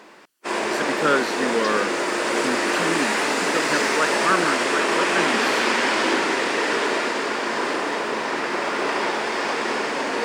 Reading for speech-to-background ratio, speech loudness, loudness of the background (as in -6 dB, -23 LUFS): -4.5 dB, -26.5 LUFS, -22.0 LUFS